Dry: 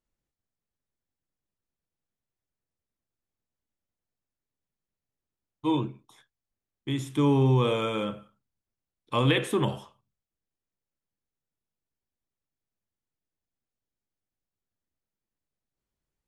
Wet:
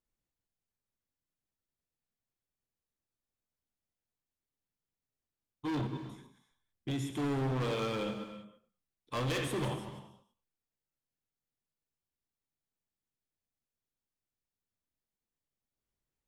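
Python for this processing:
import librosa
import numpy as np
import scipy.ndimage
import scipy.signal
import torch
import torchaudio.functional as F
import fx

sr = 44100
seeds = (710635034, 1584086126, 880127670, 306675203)

y = fx.reverse_delay(x, sr, ms=103, wet_db=-10.0)
y = fx.low_shelf(y, sr, hz=170.0, db=8.0, at=(5.7, 6.91))
y = np.clip(10.0 ** (27.0 / 20.0) * y, -1.0, 1.0) / 10.0 ** (27.0 / 20.0)
y = fx.rev_gated(y, sr, seeds[0], gate_ms=360, shape='flat', drr_db=9.0)
y = F.gain(torch.from_numpy(y), -4.5).numpy()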